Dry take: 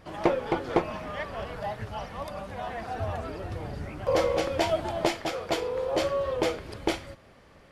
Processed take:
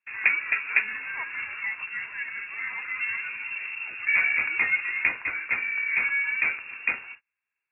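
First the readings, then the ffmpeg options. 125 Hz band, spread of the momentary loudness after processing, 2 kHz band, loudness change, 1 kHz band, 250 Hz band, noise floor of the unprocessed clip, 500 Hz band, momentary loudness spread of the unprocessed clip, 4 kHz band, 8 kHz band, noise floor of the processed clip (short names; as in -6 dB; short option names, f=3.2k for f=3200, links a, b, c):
under -20 dB, 10 LU, +15.5 dB, +4.5 dB, -9.0 dB, under -20 dB, -55 dBFS, -25.5 dB, 10 LU, n/a, under -35 dB, under -85 dBFS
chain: -af "lowpass=f=2.4k:t=q:w=0.5098,lowpass=f=2.4k:t=q:w=0.6013,lowpass=f=2.4k:t=q:w=0.9,lowpass=f=2.4k:t=q:w=2.563,afreqshift=-2800,agate=range=-33dB:threshold=-45dB:ratio=16:detection=peak,equalizer=f=100:t=o:w=0.67:g=4,equalizer=f=630:t=o:w=0.67:g=-10,equalizer=f=1.6k:t=o:w=0.67:g=5"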